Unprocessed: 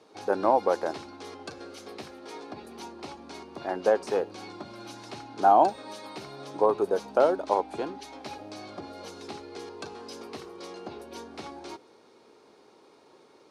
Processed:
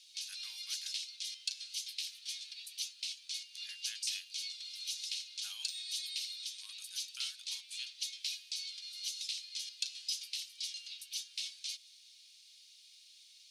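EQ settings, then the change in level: steep high-pass 2900 Hz 36 dB/oct; +10.0 dB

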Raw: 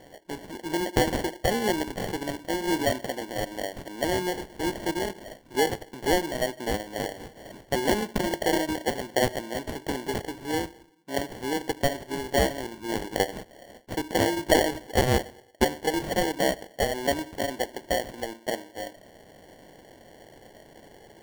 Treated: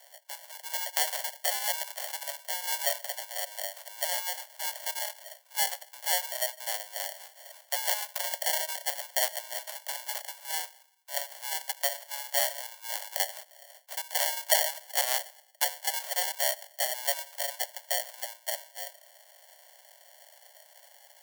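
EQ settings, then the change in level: steep high-pass 560 Hz 96 dB/oct; high shelf 2300 Hz +9 dB; high shelf 7600 Hz +9 dB; -7.5 dB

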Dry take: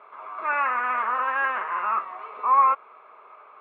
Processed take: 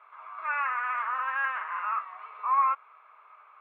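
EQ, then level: HPF 1300 Hz 12 dB/oct; high shelf 2900 Hz -9 dB; 0.0 dB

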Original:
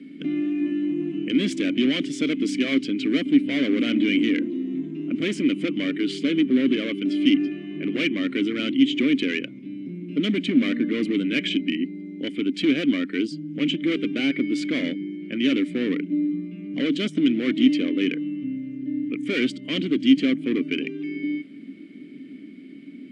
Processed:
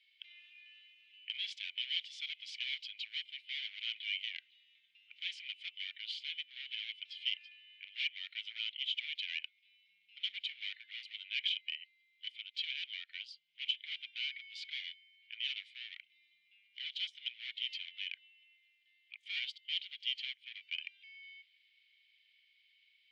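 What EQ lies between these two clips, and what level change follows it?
inverse Chebyshev high-pass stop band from 720 Hz, stop band 70 dB; air absorption 330 m; +4.5 dB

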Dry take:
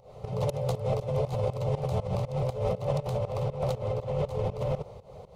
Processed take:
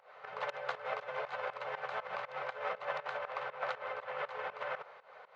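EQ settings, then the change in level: resonant high-pass 1600 Hz, resonance Q 9; tape spacing loss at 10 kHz 40 dB; +9.0 dB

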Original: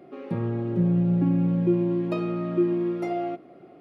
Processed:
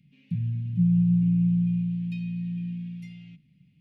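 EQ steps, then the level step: elliptic band-stop 170–2600 Hz, stop band 40 dB; high shelf 2400 Hz -11.5 dB; +3.0 dB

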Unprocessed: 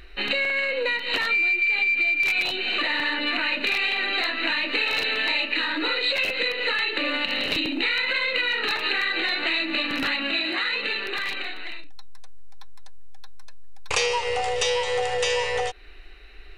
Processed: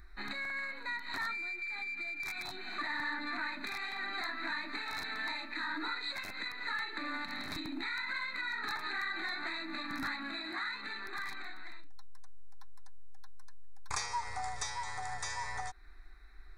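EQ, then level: fixed phaser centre 1200 Hz, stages 4; notch 2900 Hz, Q 6.1; -7.0 dB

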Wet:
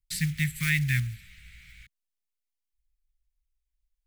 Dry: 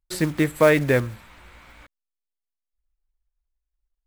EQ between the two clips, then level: elliptic band-stop 160–2000 Hz, stop band 50 dB; 0.0 dB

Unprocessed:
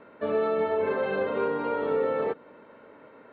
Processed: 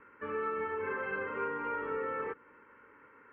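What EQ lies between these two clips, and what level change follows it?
LPF 3400 Hz 12 dB/oct; bell 190 Hz -12 dB 1.8 oct; fixed phaser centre 1600 Hz, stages 4; 0.0 dB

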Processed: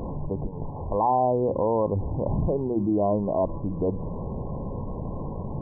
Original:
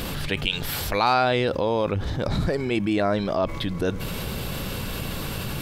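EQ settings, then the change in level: brick-wall FIR low-pass 1100 Hz; notches 60/120/180/240/300/360 Hz; 0.0 dB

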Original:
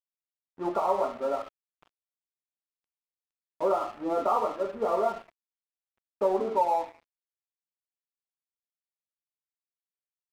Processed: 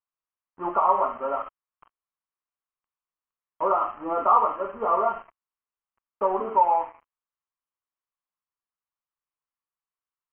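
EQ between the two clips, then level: brick-wall FIR low-pass 3200 Hz; low shelf 65 Hz +10 dB; bell 1100 Hz +15 dB 0.81 oct; -3.0 dB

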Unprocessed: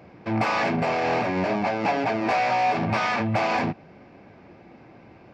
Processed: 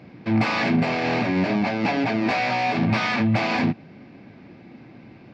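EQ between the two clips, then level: ten-band EQ 125 Hz +8 dB, 250 Hz +10 dB, 2000 Hz +5 dB, 4000 Hz +9 dB; -4.0 dB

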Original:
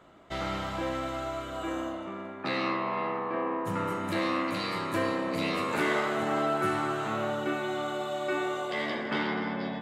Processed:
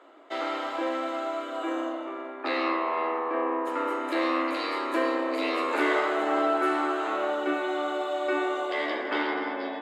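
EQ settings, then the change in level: elliptic high-pass 280 Hz, stop band 40 dB; high shelf 6300 Hz -11 dB; notch 5800 Hz, Q 13; +4.0 dB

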